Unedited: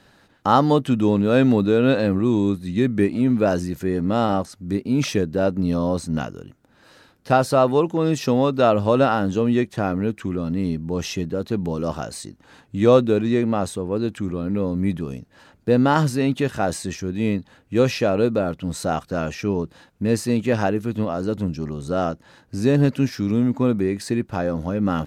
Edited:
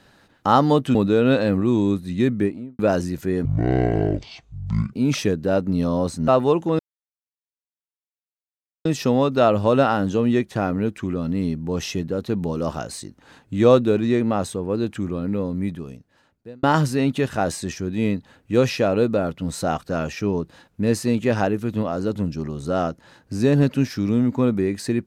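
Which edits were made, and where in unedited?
0.95–1.53 cut
2.85–3.37 studio fade out
4.03–4.83 speed 54%
6.18–7.56 cut
8.07 insert silence 2.06 s
14.38–15.85 fade out

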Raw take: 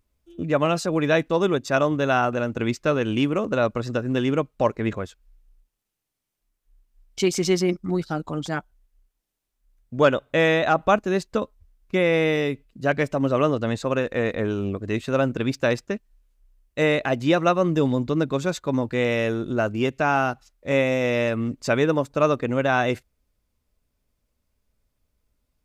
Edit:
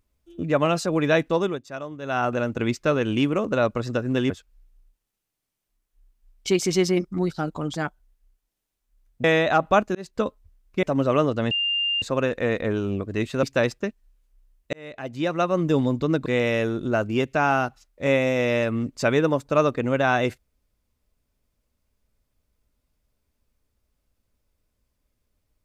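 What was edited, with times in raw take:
1.33–2.31 dip -13.5 dB, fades 0.30 s linear
4.3–5.02 cut
9.96–10.4 cut
11.11–11.37 fade in
11.99–13.08 cut
13.76 add tone 2800 Hz -21 dBFS 0.51 s
15.17–15.5 cut
16.8–17.82 fade in
18.33–18.91 cut

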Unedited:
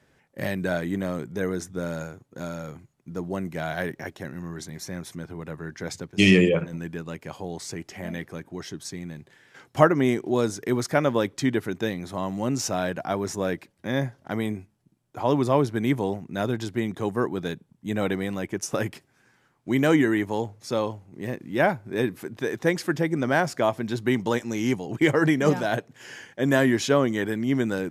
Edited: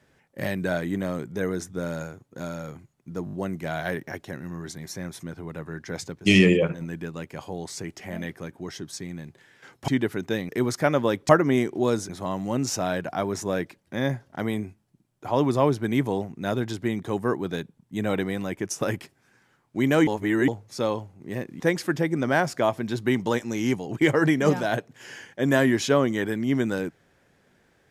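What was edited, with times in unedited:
3.25 stutter 0.02 s, 5 plays
9.8–10.6 swap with 11.4–12.01
19.99–20.4 reverse
21.52–22.6 cut

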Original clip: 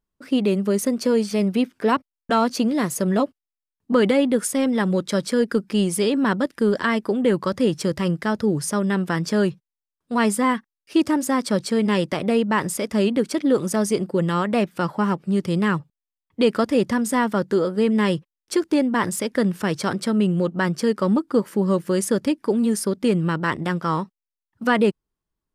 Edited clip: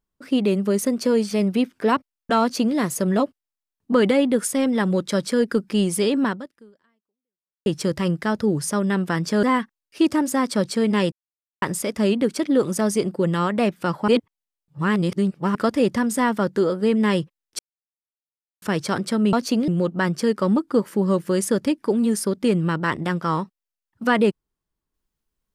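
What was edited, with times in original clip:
2.41–2.76 copy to 20.28
6.24–7.66 fade out exponential
9.43–10.38 cut
12.07–12.57 mute
15.03–16.5 reverse
18.54–19.57 mute

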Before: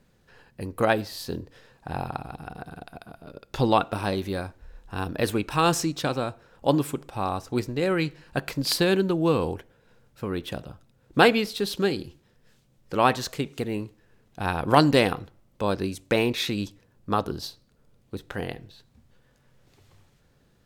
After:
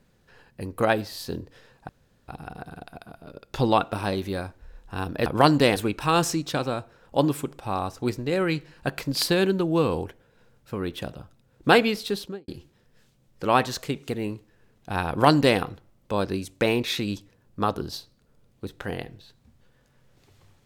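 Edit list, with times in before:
1.89–2.28 room tone
11.58–11.98 studio fade out
14.59–15.09 copy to 5.26

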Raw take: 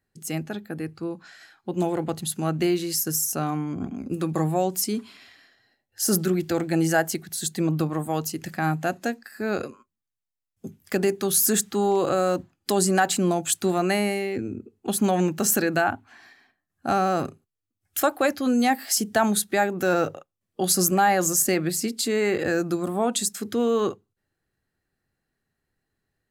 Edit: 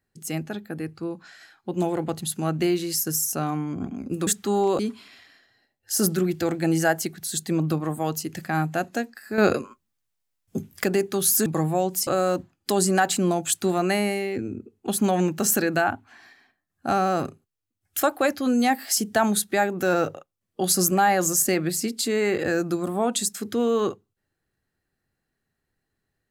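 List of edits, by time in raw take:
4.27–4.88 swap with 11.55–12.07
9.47–10.93 gain +8 dB

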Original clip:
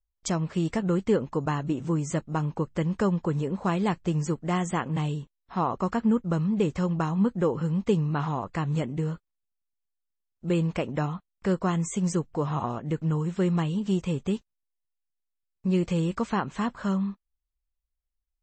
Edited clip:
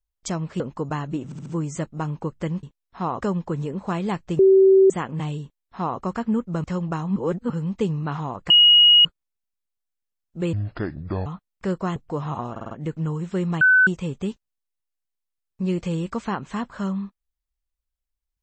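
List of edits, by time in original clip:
0.6–1.16 cut
1.81 stutter 0.07 s, 4 plays
4.16–4.67 bleep 384 Hz -10 dBFS
5.19–5.77 copy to 2.98
6.41–6.72 cut
7.24–7.58 reverse
8.58–9.13 bleep 2890 Hz -9.5 dBFS
10.61–11.07 speed 63%
11.77–12.21 cut
12.76 stutter 0.05 s, 5 plays
13.66–13.92 bleep 1510 Hz -11.5 dBFS

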